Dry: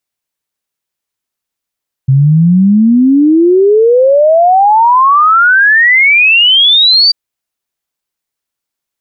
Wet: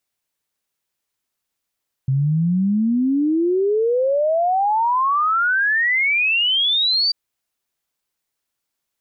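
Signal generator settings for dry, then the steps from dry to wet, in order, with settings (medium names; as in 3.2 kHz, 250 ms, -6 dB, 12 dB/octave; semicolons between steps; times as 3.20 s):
log sweep 130 Hz -> 4.7 kHz 5.04 s -3.5 dBFS
peak limiter -15 dBFS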